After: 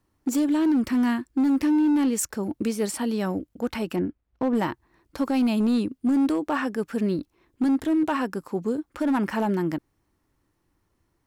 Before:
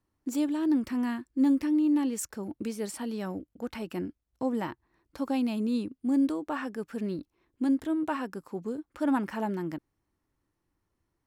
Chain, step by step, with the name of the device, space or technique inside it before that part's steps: 3.95–4.54 s: low-pass 1.7 kHz -> 3.2 kHz 12 dB/octave; limiter into clipper (peak limiter -23 dBFS, peak gain reduction 7 dB; hard clipper -25.5 dBFS, distortion -21 dB); trim +8 dB

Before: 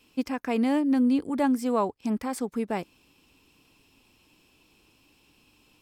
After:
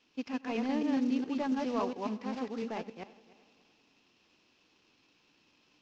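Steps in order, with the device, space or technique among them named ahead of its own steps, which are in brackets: chunks repeated in reverse 138 ms, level -2 dB; early wireless headset (high-pass 160 Hz 12 dB/octave; CVSD coder 32 kbps); dynamic bell 2.7 kHz, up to +6 dB, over -58 dBFS, Q 5.1; low-pass 11 kHz; multi-head delay 98 ms, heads first and third, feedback 49%, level -20.5 dB; trim -8.5 dB

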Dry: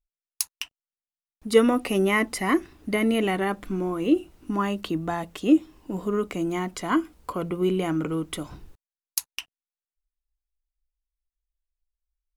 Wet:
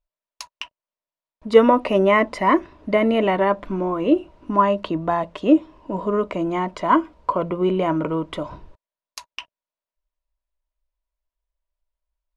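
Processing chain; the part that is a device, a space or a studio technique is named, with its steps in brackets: inside a cardboard box (low-pass 3.8 kHz 12 dB/octave; small resonant body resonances 610/960 Hz, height 15 dB, ringing for 35 ms); trim +2 dB

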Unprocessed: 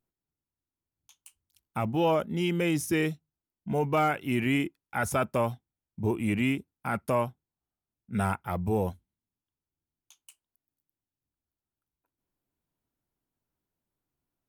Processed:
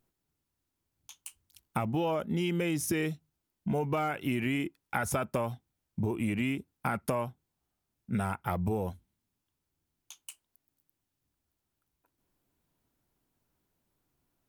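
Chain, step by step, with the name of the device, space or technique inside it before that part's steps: serial compression, peaks first (compression, threshold -32 dBFS, peak gain reduction 10.5 dB; compression 1.5:1, threshold -41 dBFS, peak gain reduction 4.5 dB); trim +8 dB

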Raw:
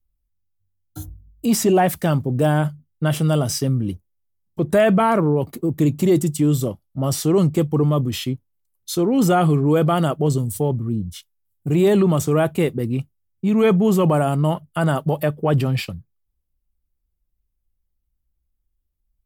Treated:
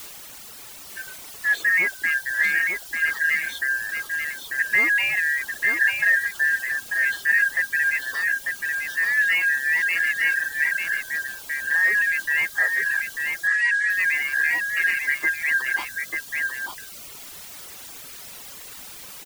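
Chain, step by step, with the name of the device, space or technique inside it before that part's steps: split-band scrambled radio (four frequency bands reordered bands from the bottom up 2143; band-pass 320–3000 Hz; white noise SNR 15 dB); delay 893 ms -4.5 dB; reverb removal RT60 0.95 s; 13.47–13.90 s: elliptic band-pass 1.2–8.7 kHz, stop band 40 dB; trim -3 dB

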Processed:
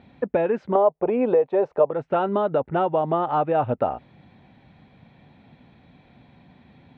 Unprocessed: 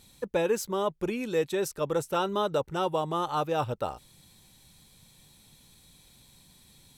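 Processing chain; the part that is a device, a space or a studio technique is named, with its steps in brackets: 0.75–1.91 s: high-order bell 680 Hz +14 dB; bass amplifier (compression 4:1, threshold -30 dBFS, peak gain reduction 17.5 dB; cabinet simulation 79–2300 Hz, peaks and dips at 250 Hz +7 dB, 690 Hz +9 dB, 1.1 kHz -3 dB); trim +9 dB

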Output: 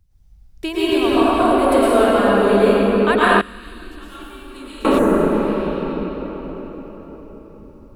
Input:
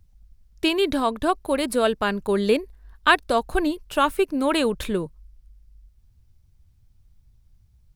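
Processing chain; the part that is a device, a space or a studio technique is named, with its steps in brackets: cathedral (reverberation RT60 5.0 s, pre-delay 100 ms, DRR -11.5 dB); 3.41–4.85 s: amplifier tone stack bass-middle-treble 6-0-2; 5.01–5.57 s: spectral replace 2.1–5.7 kHz after; dynamic bell 4.5 kHz, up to -6 dB, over -33 dBFS, Q 0.8; trim -3.5 dB

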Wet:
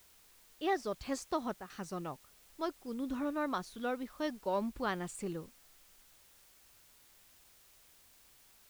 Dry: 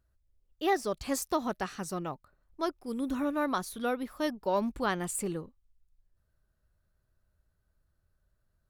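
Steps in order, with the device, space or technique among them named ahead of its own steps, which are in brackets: worn cassette (low-pass 6.3 kHz 12 dB/octave; wow and flutter 19 cents; level dips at 1.57 s, 127 ms -8 dB; white noise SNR 23 dB); trim -5 dB

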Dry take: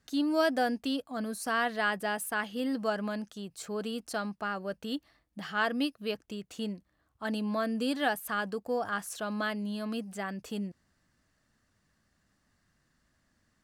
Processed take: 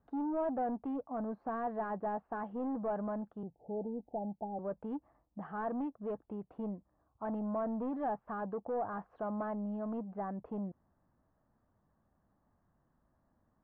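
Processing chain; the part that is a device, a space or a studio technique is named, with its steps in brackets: overdriven synthesiser ladder filter (saturation -32.5 dBFS, distortion -8 dB; four-pole ladder low-pass 1.1 kHz, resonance 40%); 3.43–4.59 s: Chebyshev low-pass 880 Hz, order 8; trim +7 dB

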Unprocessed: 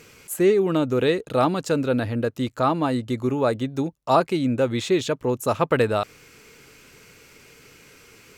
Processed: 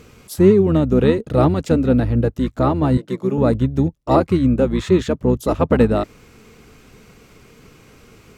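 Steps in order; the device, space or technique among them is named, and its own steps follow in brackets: 2.97–3.38 s: steep high-pass 290 Hz 48 dB/octave; tilt shelf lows +5.5 dB, about 650 Hz; octave pedal (harmony voices -12 st -3 dB); trim +2 dB

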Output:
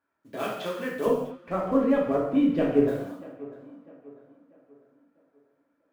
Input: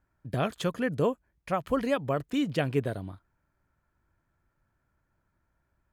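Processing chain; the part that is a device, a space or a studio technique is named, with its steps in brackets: early digital voice recorder (band-pass 290–3800 Hz; block-companded coder 5-bit); hum notches 50/100/150 Hz; 1.06–2.88 s: tilt EQ -4.5 dB/octave; tape echo 646 ms, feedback 44%, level -17 dB, low-pass 2.5 kHz; gated-style reverb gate 270 ms falling, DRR -4.5 dB; trim -4.5 dB

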